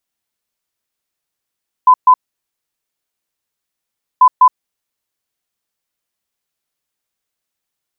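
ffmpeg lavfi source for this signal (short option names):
-f lavfi -i "aevalsrc='0.708*sin(2*PI*1010*t)*clip(min(mod(mod(t,2.34),0.2),0.07-mod(mod(t,2.34),0.2))/0.005,0,1)*lt(mod(t,2.34),0.4)':d=4.68:s=44100"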